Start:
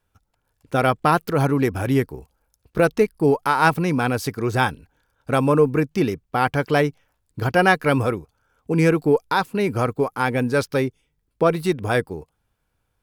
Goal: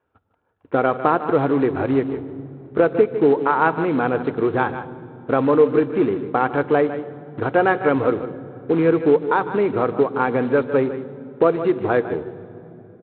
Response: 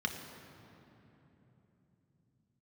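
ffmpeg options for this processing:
-filter_complex "[0:a]highpass=110,lowshelf=frequency=220:gain=6.5,asplit=2[link_01][link_02];[link_02]adelay=151.6,volume=-14dB,highshelf=frequency=4000:gain=-3.41[link_03];[link_01][link_03]amix=inputs=2:normalize=0,aresample=8000,acrusher=bits=4:mode=log:mix=0:aa=0.000001,aresample=44100,acompressor=threshold=-20dB:ratio=2,firequalizer=gain_entry='entry(190,0);entry(340,10);entry(2600,-1)':delay=0.05:min_phase=1,asplit=2[link_04][link_05];[1:a]atrim=start_sample=2205,highshelf=frequency=4200:gain=8.5[link_06];[link_05][link_06]afir=irnorm=-1:irlink=0,volume=-15dB[link_07];[link_04][link_07]amix=inputs=2:normalize=0,volume=-4dB"

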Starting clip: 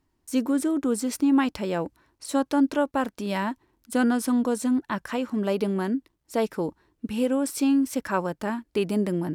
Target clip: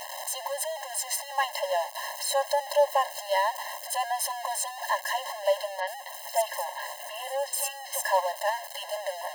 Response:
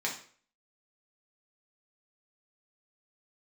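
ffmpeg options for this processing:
-filter_complex "[0:a]aeval=exprs='val(0)+0.5*0.0447*sgn(val(0))':channel_layout=same,equalizer=frequency=2300:width=2.9:gain=-3.5,asettb=1/sr,asplit=3[link_01][link_02][link_03];[link_01]atrim=end=5.804[link_04];[link_02]atrim=start=5.8:end=8.04,asetpts=PTS-STARTPTS,afade=type=in:duration=0.004:curve=qsin,afade=type=out:start_time=2.236:duration=0.004:curve=qsin,acrossover=split=330|4700[link_05][link_06][link_07];[link_07]adelay=70[link_08];[link_05]adelay=260[link_09];[link_09][link_06][link_08]amix=inputs=3:normalize=0,atrim=end_sample=98784[link_10];[link_03]atrim=start=8.036[link_11];[link_04][link_10]acrossfade=duration=0.004:curve1=hsin:curve2=qsin[link_12];[link_12][link_11]acrossfade=duration=0.004:curve1=qsin:curve2=hsin,afftfilt=real='re*eq(mod(floor(b*sr/1024/540),2),1)':imag='im*eq(mod(floor(b*sr/1024/540),2),1)':win_size=1024:overlap=0.75,volume=3dB"

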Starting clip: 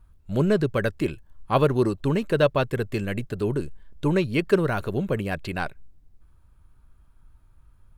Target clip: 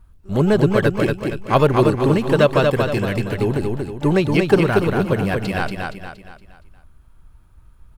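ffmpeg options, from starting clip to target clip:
ffmpeg -i in.wav -filter_complex "[0:a]asplit=2[link_01][link_02];[link_02]asetrate=88200,aresample=44100,atempo=0.5,volume=-17dB[link_03];[link_01][link_03]amix=inputs=2:normalize=0,aecho=1:1:234|468|702|936|1170:0.631|0.265|0.111|0.0467|0.0196,volume=5dB" out.wav

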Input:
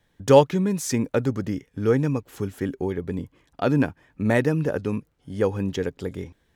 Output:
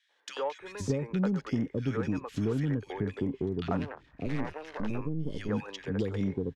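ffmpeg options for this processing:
ffmpeg -i in.wav -filter_complex "[0:a]acrossover=split=110|1100[link_01][link_02][link_03];[link_01]acompressor=threshold=-45dB:ratio=4[link_04];[link_02]acompressor=threshold=-29dB:ratio=4[link_05];[link_03]acompressor=threshold=-42dB:ratio=4[link_06];[link_04][link_05][link_06]amix=inputs=3:normalize=0,asettb=1/sr,asplit=3[link_07][link_08][link_09];[link_07]atrim=end=3.664[link_10];[link_08]atrim=start=3.66:end=4.89,asetpts=PTS-STARTPTS,afade=type=in:duration=0.004:curve=qsin,afade=type=out:start_time=1.226:duration=0.004:curve=qsin,aeval=exprs='max(val(0),0)':channel_layout=same[link_11];[link_09]atrim=start=4.886[link_12];[link_10][link_11]acrossfade=duration=0.004:curve1=hsin:curve2=qsin[link_13];[link_13][link_12]acrossfade=duration=0.004:curve1=qsin:curve2=hsin,lowpass=4800,equalizer=frequency=660:width_type=o:width=0.65:gain=-3.5,acrossover=split=490|1800[link_14][link_15][link_16];[link_15]adelay=90[link_17];[link_14]adelay=600[link_18];[link_18][link_17][link_16]amix=inputs=3:normalize=0,asplit=2[link_19][link_20];[link_20]asoftclip=type=tanh:threshold=-30.5dB,volume=-6dB[link_21];[link_19][link_21]amix=inputs=2:normalize=0" out.wav

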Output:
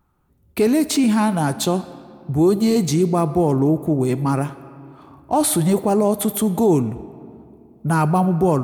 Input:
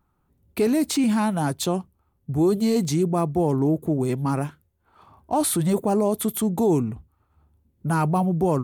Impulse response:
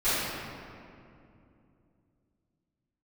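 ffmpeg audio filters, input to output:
-filter_complex "[0:a]asplit=2[link_01][link_02];[1:a]atrim=start_sample=2205,lowshelf=frequency=340:gain=-11[link_03];[link_02][link_03]afir=irnorm=-1:irlink=0,volume=-25.5dB[link_04];[link_01][link_04]amix=inputs=2:normalize=0,volume=4dB"

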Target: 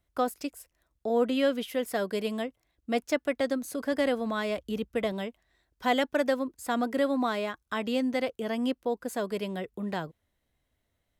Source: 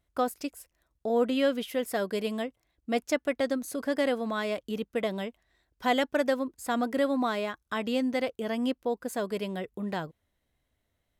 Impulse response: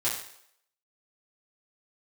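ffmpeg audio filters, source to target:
-filter_complex "[0:a]asettb=1/sr,asplit=3[link_01][link_02][link_03];[link_01]atrim=end=3.924[link_04];[link_02]atrim=start=3.92:end=5.12,asetpts=PTS-STARTPTS,afade=type=in:duration=0.004:curve=qsin,afade=type=out:start_time=1.196:duration=0.004:curve=qsin,equalizer=frequency=66:width=1.3:gain=14[link_05];[link_03]atrim=start=5.116[link_06];[link_04][link_05]acrossfade=duration=0.004:curve1=hsin:curve2=qsin[link_07];[link_07][link_06]acrossfade=duration=0.004:curve1=qsin:curve2=hsin,acrossover=split=410|1000|4200[link_08][link_09][link_10][link_11];[link_11]asoftclip=type=hard:threshold=-37dB[link_12];[link_08][link_09][link_10][link_12]amix=inputs=4:normalize=0"

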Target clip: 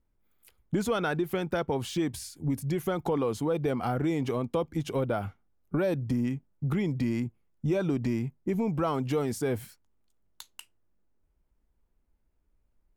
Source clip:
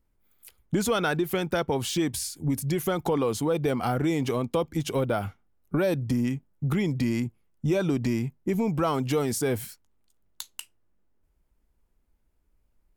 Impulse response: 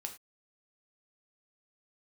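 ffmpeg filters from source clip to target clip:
-af "highshelf=frequency=3100:gain=-7.5,volume=-2.5dB"

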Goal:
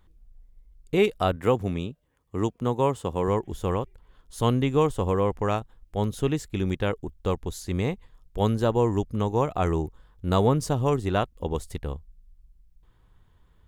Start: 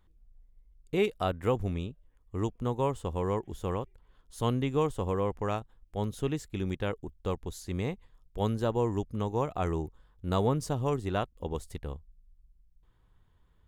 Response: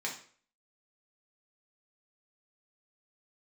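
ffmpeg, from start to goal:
-filter_complex "[0:a]asettb=1/sr,asplit=3[link_01][link_02][link_03];[link_01]atrim=end=1.364[link_04];[link_02]atrim=start=1.36:end=3.28,asetpts=PTS-STARTPTS,afade=type=in:duration=0.004:curve=qsin,afade=type=out:start_time=1.916:duration=0.004:curve=qsin,highpass=110[link_05];[link_03]atrim=start=3.276[link_06];[link_04][link_05]acrossfade=duration=0.004:curve1=hsin:curve2=qsin[link_07];[link_07][link_06]acrossfade=duration=0.004:curve1=qsin:curve2=hsin,volume=6dB"

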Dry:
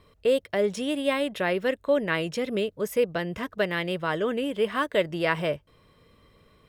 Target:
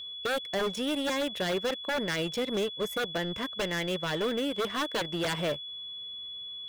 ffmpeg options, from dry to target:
ffmpeg -i in.wav -af "aeval=exprs='0.0794*(abs(mod(val(0)/0.0794+3,4)-2)-1)':channel_layout=same,aeval=exprs='0.0794*(cos(1*acos(clip(val(0)/0.0794,-1,1)))-cos(1*PI/2))+0.00631*(cos(7*acos(clip(val(0)/0.0794,-1,1)))-cos(7*PI/2))':channel_layout=same,aeval=exprs='val(0)+0.0158*sin(2*PI*3400*n/s)':channel_layout=same,volume=-2dB" out.wav

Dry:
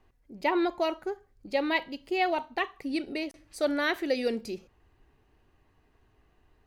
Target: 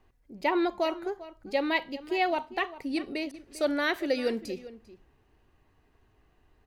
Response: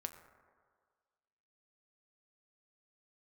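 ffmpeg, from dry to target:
-filter_complex "[0:a]asplit=2[link_01][link_02];[link_02]adelay=396.5,volume=-16dB,highshelf=frequency=4000:gain=-8.92[link_03];[link_01][link_03]amix=inputs=2:normalize=0"

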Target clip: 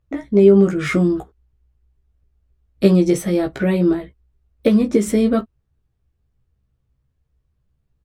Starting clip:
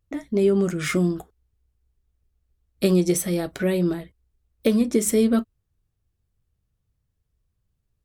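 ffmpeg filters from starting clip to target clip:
ffmpeg -i in.wav -filter_complex "[0:a]lowpass=frequency=2100:poles=1,asplit=2[link_01][link_02];[link_02]adelay=15,volume=-4dB[link_03];[link_01][link_03]amix=inputs=2:normalize=0,volume=5dB" out.wav

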